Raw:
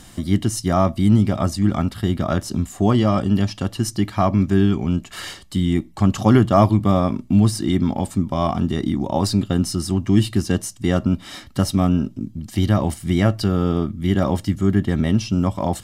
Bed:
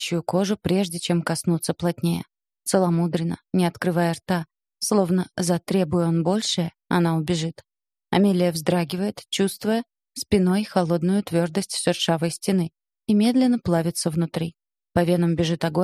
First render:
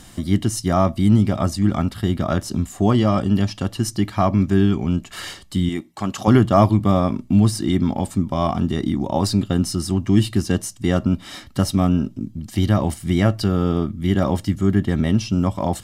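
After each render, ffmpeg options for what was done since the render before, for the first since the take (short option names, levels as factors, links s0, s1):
-filter_complex "[0:a]asettb=1/sr,asplit=3[s0][s1][s2];[s0]atrim=end=5.694[s3];[s1]atrim=start=5.69:end=6.28,asetpts=PTS-STARTPTS,afade=t=in:d=0.004:c=qsin,afade=t=out:st=0.586:d=0.004:c=qsin,highpass=f=450:p=1[s4];[s2]atrim=start=6.276[s5];[s3][s4]acrossfade=d=0.004:c1=hsin:c2=qsin[s6];[s6][s5]acrossfade=d=0.004:c1=qsin:c2=hsin"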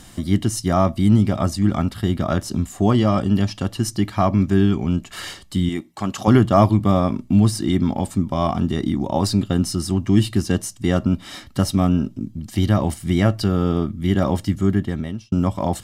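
-filter_complex "[0:a]asplit=2[s0][s1];[s0]atrim=end=15.32,asetpts=PTS-STARTPTS,afade=t=out:st=14.65:d=0.67[s2];[s1]atrim=start=15.32,asetpts=PTS-STARTPTS,afade=t=in:d=0.004:c=hsin[s3];[s2][s3]concat=n=2:v=0:a=1"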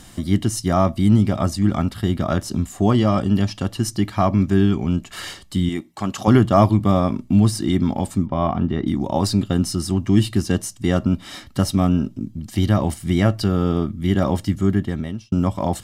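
-filter_complex "[0:a]asettb=1/sr,asplit=3[s0][s1][s2];[s0]atrim=end=8.264[s3];[s1]atrim=start=8.26:end=8.87,asetpts=PTS-STARTPTS,afade=t=in:d=0.004:c=qsin,afade=t=out:st=0.606:d=0.004:c=qsin,lowpass=2500[s4];[s2]atrim=start=8.866[s5];[s3][s4]acrossfade=d=0.004:c1=hsin:c2=qsin[s6];[s6][s5]acrossfade=d=0.004:c1=qsin:c2=hsin"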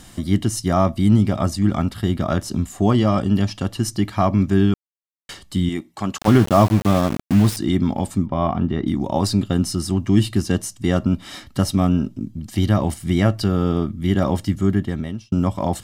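-filter_complex "[0:a]asettb=1/sr,asplit=3[s0][s1][s2];[s0]atrim=end=6.184[s3];[s1]atrim=start=6.18:end=7.57,asetpts=PTS-STARTPTS,afade=t=in:d=0.004:c=qsin,afade=t=out:st=1.386:d=0.004:c=qsin,aeval=exprs='val(0)*gte(abs(val(0)),0.0708)':c=same[s4];[s2]atrim=start=7.566[s5];[s3][s4]acrossfade=d=0.004:c1=hsin:c2=qsin[s6];[s6][s5]acrossfade=d=0.004:c1=qsin:c2=hsin,asplit=3[s7][s8][s9];[s7]atrim=end=4.74,asetpts=PTS-STARTPTS,afade=t=out:st=4.736:d=0.004:c=hsin[s10];[s8]atrim=start=4.74:end=5.29,asetpts=PTS-STARTPTS,volume=0[s11];[s9]atrim=start=5.29,asetpts=PTS-STARTPTS,afade=t=in:d=0.004:c=hsin[s12];[s10][s11][s12]concat=n=3:v=0:a=1"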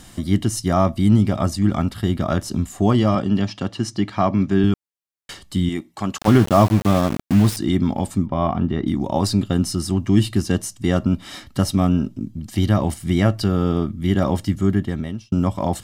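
-filter_complex "[0:a]asettb=1/sr,asplit=3[s0][s1][s2];[s0]atrim=end=3.154[s3];[s1]atrim=start=3.15:end=4.64,asetpts=PTS-STARTPTS,afade=t=in:d=0.004:c=qsin,afade=t=out:st=1.486:d=0.004:c=qsin,highpass=120,lowpass=5900[s4];[s2]atrim=start=4.636[s5];[s3][s4]acrossfade=d=0.004:c1=hsin:c2=qsin[s6];[s6][s5]acrossfade=d=0.004:c1=qsin:c2=hsin"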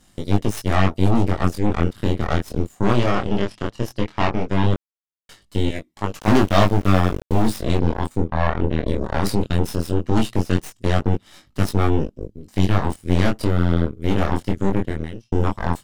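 -af "aeval=exprs='0.75*(cos(1*acos(clip(val(0)/0.75,-1,1)))-cos(1*PI/2))+0.075*(cos(7*acos(clip(val(0)/0.75,-1,1)))-cos(7*PI/2))+0.15*(cos(8*acos(clip(val(0)/0.75,-1,1)))-cos(8*PI/2))':c=same,flanger=delay=19.5:depth=5.9:speed=0.17"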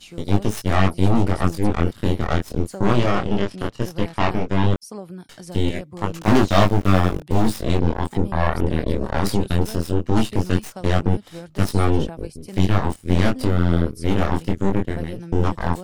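-filter_complex "[1:a]volume=0.168[s0];[0:a][s0]amix=inputs=2:normalize=0"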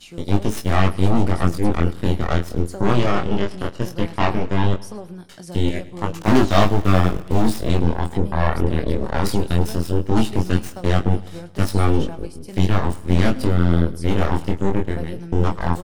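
-filter_complex "[0:a]asplit=2[s0][s1];[s1]adelay=23,volume=0.224[s2];[s0][s2]amix=inputs=2:normalize=0,aecho=1:1:106|212|318|424|530:0.1|0.058|0.0336|0.0195|0.0113"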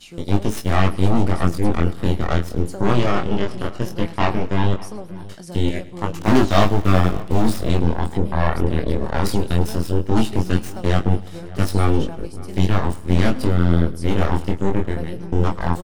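-filter_complex "[0:a]asplit=2[s0][s1];[s1]adelay=583.1,volume=0.112,highshelf=f=4000:g=-13.1[s2];[s0][s2]amix=inputs=2:normalize=0"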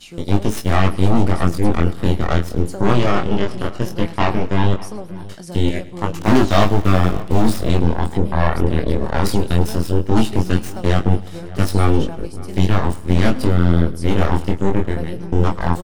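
-af "volume=1.33,alimiter=limit=0.794:level=0:latency=1"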